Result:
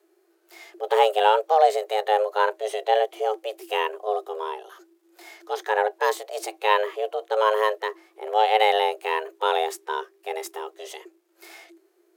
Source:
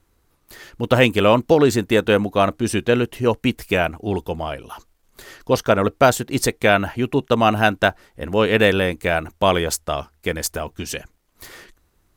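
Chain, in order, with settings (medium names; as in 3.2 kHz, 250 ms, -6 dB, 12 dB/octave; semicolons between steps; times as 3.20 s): frequency shift +320 Hz; harmonic-percussive split percussive -14 dB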